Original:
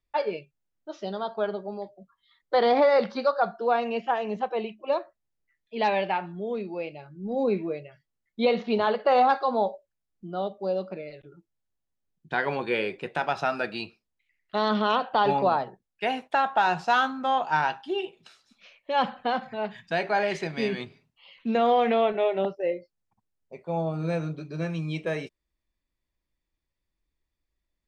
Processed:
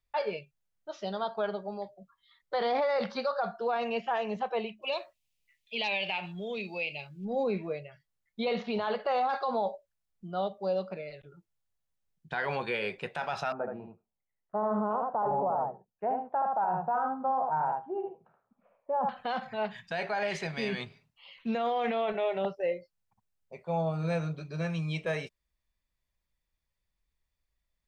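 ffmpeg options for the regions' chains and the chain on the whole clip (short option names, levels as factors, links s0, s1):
-filter_complex "[0:a]asettb=1/sr,asplit=3[s0][s1][s2];[s0]atrim=end=4.824[s3];[s1]atrim=start=4.82:end=7.25,asetpts=PTS-STARTPTS,afade=t=in:d=0.004:c=qsin,afade=t=out:st=2.426:d=0.004:c=qsin,highshelf=f=2000:t=q:w=3:g=8.5,acompressor=threshold=0.0316:ratio=2:attack=3.2:release=140:knee=1:detection=peak[s4];[s2]atrim=start=7.246[s5];[s3][s4]acrossfade=d=0.004:c1=hsin:c2=qsin[s6];[s6][s5]acrossfade=d=0.004:c1=qsin:c2=hsin,asettb=1/sr,asplit=3[s7][s8][s9];[s7]atrim=end=13.524[s10];[s8]atrim=start=13.52:end=19.09,asetpts=PTS-STARTPTS,afade=t=in:d=0.004:c=qsin,afade=t=out:st=5.566:d=0.004:c=qsin,lowpass=f=1000:w=0.5412,lowpass=f=1000:w=1.3066,lowshelf=f=84:g=-10,aecho=1:1:76:0.531,atrim=end_sample=245637[s11];[s9]atrim=start=19.086[s12];[s10][s11]acrossfade=d=0.004:c1=hsin:c2=qsin[s13];[s13][s12]acrossfade=d=0.004:c1=qsin:c2=hsin,equalizer=f=310:w=2:g=-10.5,alimiter=limit=0.0794:level=0:latency=1:release=16"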